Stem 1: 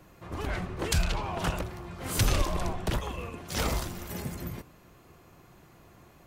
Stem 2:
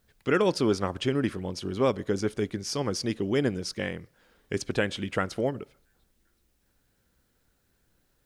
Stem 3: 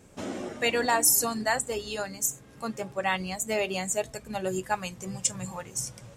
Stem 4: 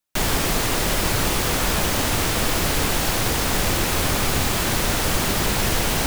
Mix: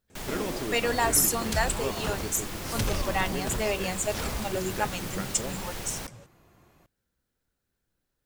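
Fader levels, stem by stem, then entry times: −4.5, −10.5, −1.0, −16.0 decibels; 0.60, 0.00, 0.10, 0.00 seconds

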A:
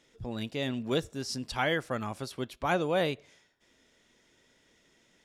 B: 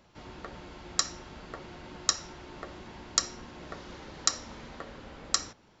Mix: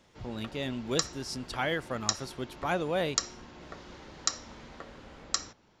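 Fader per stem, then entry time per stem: −2.0, −3.0 decibels; 0.00, 0.00 seconds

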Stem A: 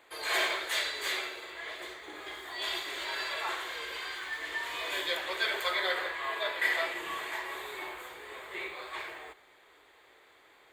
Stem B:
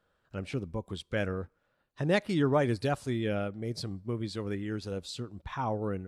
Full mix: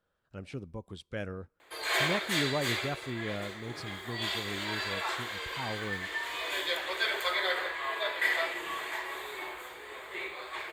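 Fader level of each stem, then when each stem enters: +0.5, −6.0 decibels; 1.60, 0.00 seconds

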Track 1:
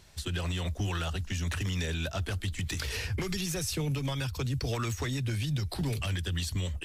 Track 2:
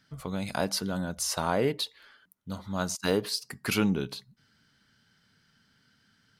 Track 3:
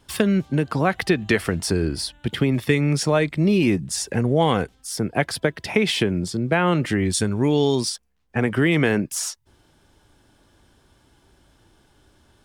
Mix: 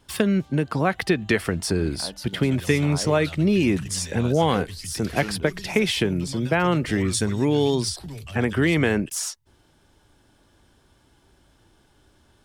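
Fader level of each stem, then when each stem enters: −5.5, −8.5, −1.5 decibels; 2.25, 1.45, 0.00 seconds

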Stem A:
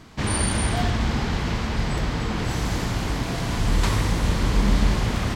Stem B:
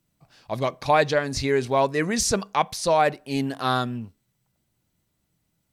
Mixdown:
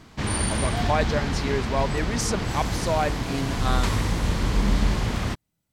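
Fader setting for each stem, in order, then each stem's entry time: −2.0, −5.0 decibels; 0.00, 0.00 seconds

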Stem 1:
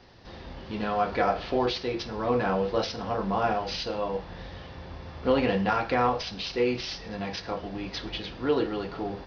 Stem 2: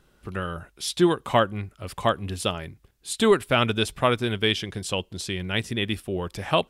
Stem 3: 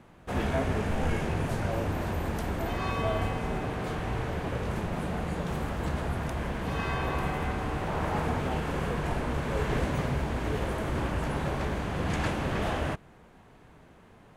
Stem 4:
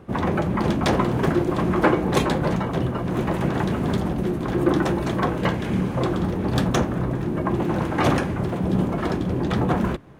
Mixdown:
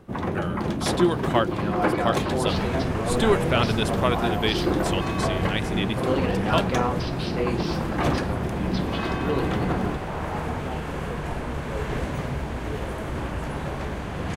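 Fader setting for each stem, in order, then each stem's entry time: −2.5, −2.5, +0.5, −5.0 decibels; 0.80, 0.00, 2.20, 0.00 seconds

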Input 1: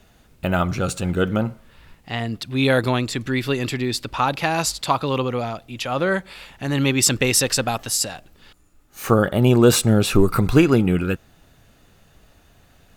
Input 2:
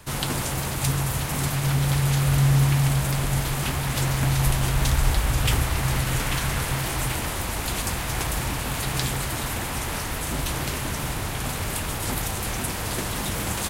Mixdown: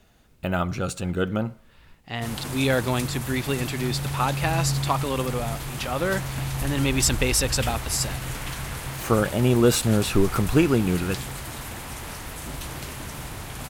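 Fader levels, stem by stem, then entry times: −4.5, −7.0 decibels; 0.00, 2.15 seconds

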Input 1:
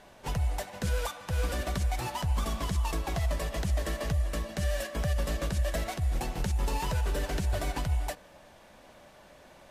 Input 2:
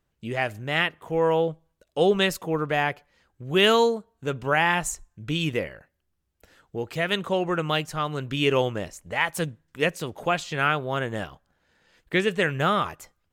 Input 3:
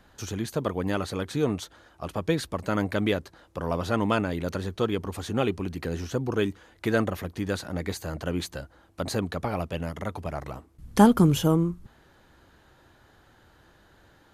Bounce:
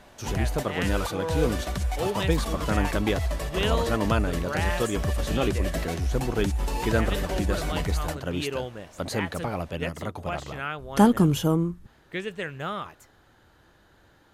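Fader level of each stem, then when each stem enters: +1.5, −9.5, −1.0 decibels; 0.00, 0.00, 0.00 seconds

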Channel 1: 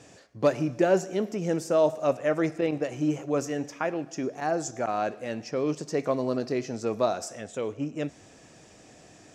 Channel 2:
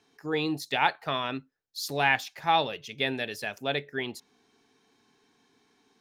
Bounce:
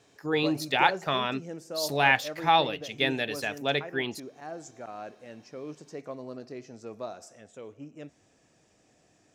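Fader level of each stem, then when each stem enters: −12.5, +2.0 decibels; 0.00, 0.00 seconds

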